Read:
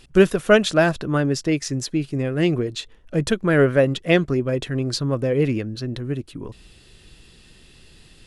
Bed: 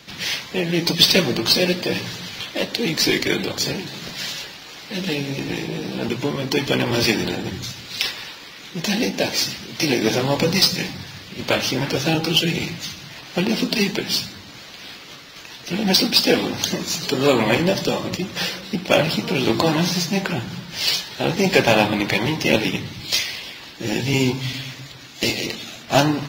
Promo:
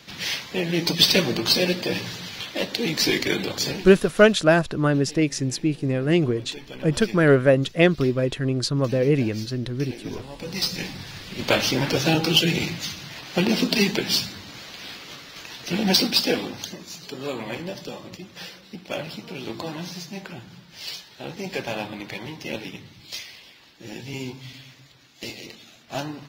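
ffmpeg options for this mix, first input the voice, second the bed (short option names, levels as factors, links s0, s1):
-filter_complex "[0:a]adelay=3700,volume=1[s0];[1:a]volume=6.31,afade=t=out:st=3.68:d=0.59:silence=0.149624,afade=t=in:st=10.38:d=0.89:silence=0.112202,afade=t=out:st=15.69:d=1.06:silence=0.211349[s1];[s0][s1]amix=inputs=2:normalize=0"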